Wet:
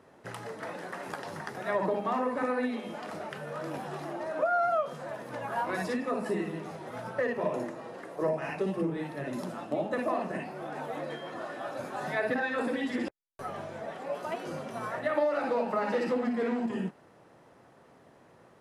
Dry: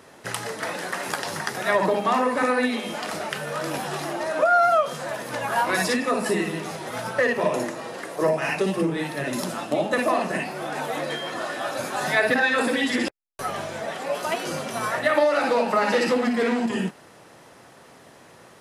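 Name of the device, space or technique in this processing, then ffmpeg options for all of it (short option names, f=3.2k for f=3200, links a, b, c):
through cloth: -af "highshelf=f=2.1k:g=-13,volume=-6.5dB"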